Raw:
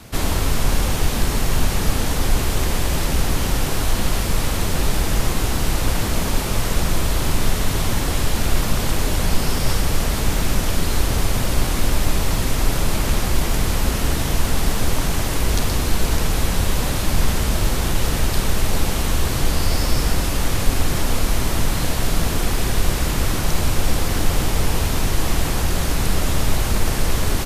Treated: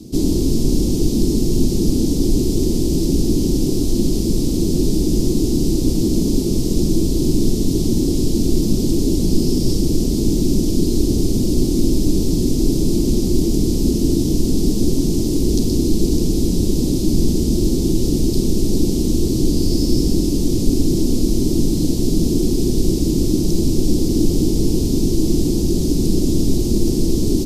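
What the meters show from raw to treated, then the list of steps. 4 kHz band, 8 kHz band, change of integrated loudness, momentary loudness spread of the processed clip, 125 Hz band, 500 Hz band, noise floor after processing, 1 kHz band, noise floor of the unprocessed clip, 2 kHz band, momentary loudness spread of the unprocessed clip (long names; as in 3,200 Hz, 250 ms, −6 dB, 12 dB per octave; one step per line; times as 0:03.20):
−3.0 dB, −1.5 dB, +3.5 dB, 1 LU, +2.0 dB, +5.5 dB, −19 dBFS, below −15 dB, −22 dBFS, below −20 dB, 1 LU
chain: drawn EQ curve 100 Hz 0 dB, 340 Hz +15 dB, 540 Hz −7 dB, 1,600 Hz −30 dB, 5,000 Hz +2 dB, 11,000 Hz −5 dB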